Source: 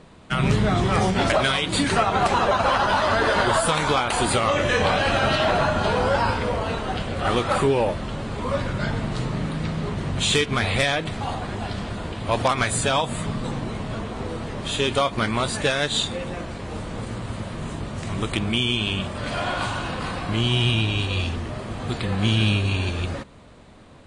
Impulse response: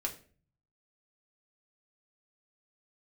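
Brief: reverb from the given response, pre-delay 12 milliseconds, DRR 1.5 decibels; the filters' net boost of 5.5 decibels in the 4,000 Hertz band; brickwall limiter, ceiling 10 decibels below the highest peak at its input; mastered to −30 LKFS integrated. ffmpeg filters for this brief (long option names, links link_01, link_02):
-filter_complex "[0:a]equalizer=frequency=4000:width_type=o:gain=7,alimiter=limit=-16dB:level=0:latency=1,asplit=2[link_01][link_02];[1:a]atrim=start_sample=2205,adelay=12[link_03];[link_02][link_03]afir=irnorm=-1:irlink=0,volume=-3dB[link_04];[link_01][link_04]amix=inputs=2:normalize=0,volume=-6.5dB"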